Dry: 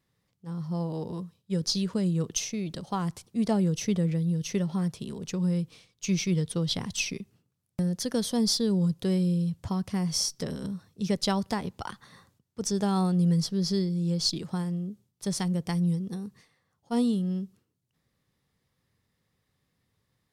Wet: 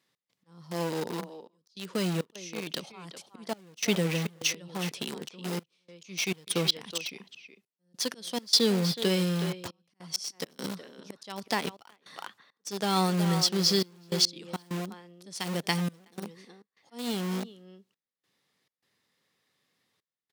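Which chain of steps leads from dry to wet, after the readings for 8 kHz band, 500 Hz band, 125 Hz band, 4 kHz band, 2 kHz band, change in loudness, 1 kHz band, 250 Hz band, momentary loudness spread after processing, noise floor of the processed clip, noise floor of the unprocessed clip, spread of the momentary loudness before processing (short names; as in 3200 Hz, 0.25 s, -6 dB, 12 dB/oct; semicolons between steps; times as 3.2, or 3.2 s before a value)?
-0.5 dB, +0.5 dB, -6.0 dB, +4.0 dB, +5.0 dB, -1.0 dB, +1.0 dB, -5.5 dB, 20 LU, under -85 dBFS, -78 dBFS, 12 LU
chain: bell 3600 Hz +6 dB 2.4 oct; auto swell 0.439 s; dynamic EQ 2600 Hz, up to +6 dB, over -52 dBFS, Q 1.8; speakerphone echo 0.37 s, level -8 dB; in parallel at -6 dB: bit-crush 5-bit; on the sum: step gate "x.xxxxxxxx..xx" 102 bpm -24 dB; HPF 250 Hz 12 dB/oct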